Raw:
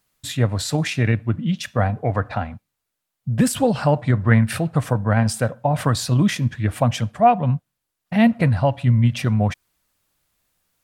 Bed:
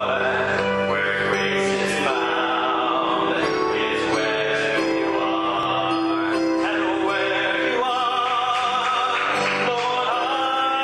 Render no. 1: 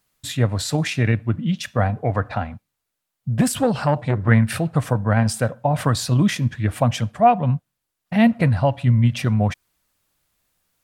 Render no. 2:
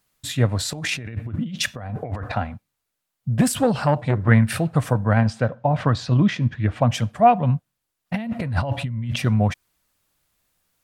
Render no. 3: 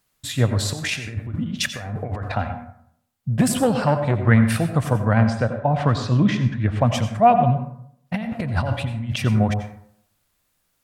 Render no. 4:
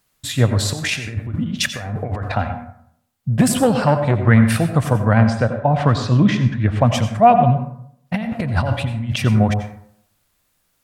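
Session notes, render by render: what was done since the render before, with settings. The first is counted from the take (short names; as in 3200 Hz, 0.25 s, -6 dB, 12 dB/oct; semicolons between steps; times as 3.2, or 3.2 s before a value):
3.41–4.28 core saturation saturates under 460 Hz
0.73–2.32 negative-ratio compressor -29 dBFS; 5.21–6.91 air absorption 160 m; 8.14–9.16 negative-ratio compressor -25 dBFS
plate-style reverb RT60 0.67 s, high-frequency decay 0.45×, pre-delay 75 ms, DRR 8 dB
gain +3.5 dB; limiter -1 dBFS, peak gain reduction 2 dB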